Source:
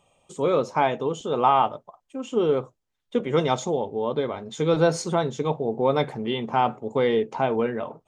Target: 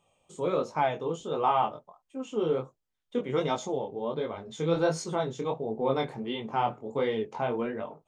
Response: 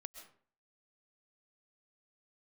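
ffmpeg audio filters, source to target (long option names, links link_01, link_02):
-af "flanger=delay=18.5:depth=6.2:speed=1.4,volume=-3dB"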